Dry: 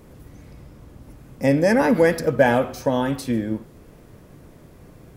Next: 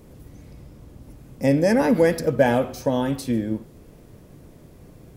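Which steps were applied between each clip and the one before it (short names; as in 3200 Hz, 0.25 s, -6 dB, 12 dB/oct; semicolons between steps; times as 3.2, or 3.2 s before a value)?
bell 1400 Hz -5 dB 1.7 oct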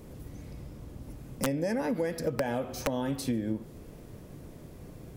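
compressor 16:1, threshold -26 dBFS, peak gain reduction 15.5 dB; wrapped overs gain 18.5 dB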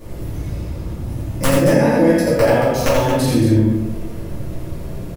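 loudspeakers at several distances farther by 29 m -3 dB, 78 m -8 dB; shoebox room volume 120 m³, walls mixed, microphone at 2.5 m; gain +4 dB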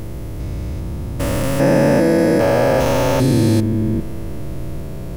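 stepped spectrum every 0.4 s; gain +2 dB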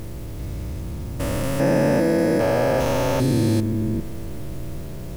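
bit-crush 7-bit; gain -5 dB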